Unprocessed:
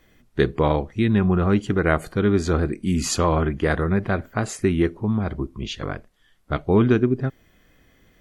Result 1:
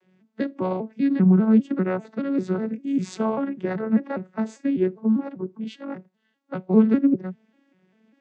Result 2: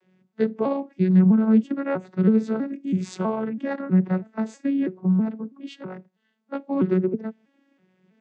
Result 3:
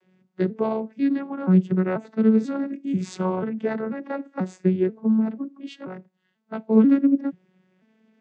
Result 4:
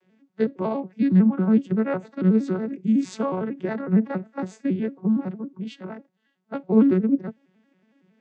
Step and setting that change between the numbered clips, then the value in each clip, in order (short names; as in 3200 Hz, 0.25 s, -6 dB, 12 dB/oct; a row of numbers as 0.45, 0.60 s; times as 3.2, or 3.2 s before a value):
arpeggiated vocoder, a note every: 198, 324, 488, 92 ms